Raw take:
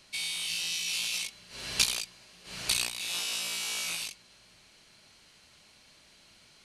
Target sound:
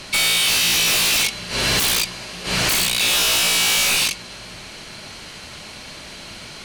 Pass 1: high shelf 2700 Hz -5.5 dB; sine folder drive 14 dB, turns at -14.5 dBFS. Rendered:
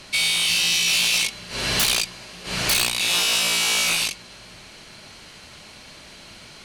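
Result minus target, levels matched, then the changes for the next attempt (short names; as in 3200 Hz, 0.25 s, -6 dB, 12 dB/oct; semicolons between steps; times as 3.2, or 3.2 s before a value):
sine folder: distortion -6 dB
change: sine folder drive 21 dB, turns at -14.5 dBFS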